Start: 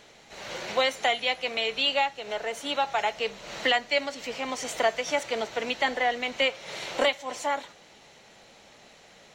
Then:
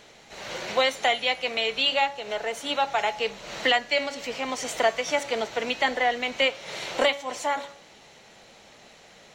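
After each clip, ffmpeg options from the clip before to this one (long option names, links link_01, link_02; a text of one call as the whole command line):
ffmpeg -i in.wav -af "bandreject=frequency=281.6:width_type=h:width=4,bandreject=frequency=563.2:width_type=h:width=4,bandreject=frequency=844.8:width_type=h:width=4,bandreject=frequency=1126.4:width_type=h:width=4,bandreject=frequency=1408:width_type=h:width=4,bandreject=frequency=1689.6:width_type=h:width=4,bandreject=frequency=1971.2:width_type=h:width=4,bandreject=frequency=2252.8:width_type=h:width=4,bandreject=frequency=2534.4:width_type=h:width=4,bandreject=frequency=2816:width_type=h:width=4,bandreject=frequency=3097.6:width_type=h:width=4,bandreject=frequency=3379.2:width_type=h:width=4,bandreject=frequency=3660.8:width_type=h:width=4,bandreject=frequency=3942.4:width_type=h:width=4,bandreject=frequency=4224:width_type=h:width=4,bandreject=frequency=4505.6:width_type=h:width=4,bandreject=frequency=4787.2:width_type=h:width=4,bandreject=frequency=5068.8:width_type=h:width=4,bandreject=frequency=5350.4:width_type=h:width=4,bandreject=frequency=5632:width_type=h:width=4,bandreject=frequency=5913.6:width_type=h:width=4,bandreject=frequency=6195.2:width_type=h:width=4,bandreject=frequency=6476.8:width_type=h:width=4,bandreject=frequency=6758.4:width_type=h:width=4,bandreject=frequency=7040:width_type=h:width=4,bandreject=frequency=7321.6:width_type=h:width=4,bandreject=frequency=7603.2:width_type=h:width=4,bandreject=frequency=7884.8:width_type=h:width=4,bandreject=frequency=8166.4:width_type=h:width=4,bandreject=frequency=8448:width_type=h:width=4,bandreject=frequency=8729.6:width_type=h:width=4,bandreject=frequency=9011.2:width_type=h:width=4,bandreject=frequency=9292.8:width_type=h:width=4,bandreject=frequency=9574.4:width_type=h:width=4,bandreject=frequency=9856:width_type=h:width=4,bandreject=frequency=10137.6:width_type=h:width=4,bandreject=frequency=10419.2:width_type=h:width=4,volume=2dB" out.wav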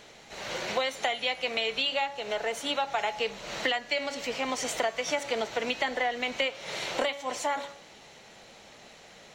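ffmpeg -i in.wav -af "acompressor=threshold=-25dB:ratio=6" out.wav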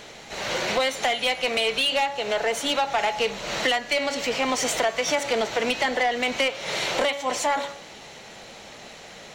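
ffmpeg -i in.wav -af "asoftclip=type=tanh:threshold=-25dB,volume=8.5dB" out.wav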